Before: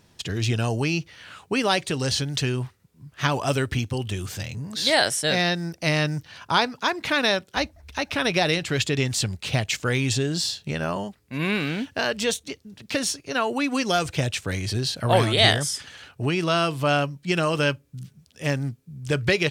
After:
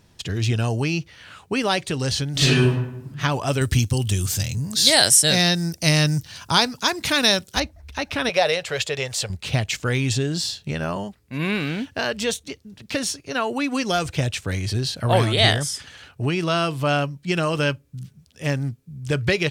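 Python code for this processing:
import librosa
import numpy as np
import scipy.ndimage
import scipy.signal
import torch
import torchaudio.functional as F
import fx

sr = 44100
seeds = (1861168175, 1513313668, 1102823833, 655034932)

y = fx.reverb_throw(x, sr, start_s=2.32, length_s=0.77, rt60_s=0.83, drr_db=-10.5)
y = fx.bass_treble(y, sr, bass_db=5, treble_db=14, at=(3.61, 7.6))
y = fx.low_shelf_res(y, sr, hz=390.0, db=-9.5, q=3.0, at=(8.29, 9.3))
y = fx.low_shelf(y, sr, hz=93.0, db=7.5)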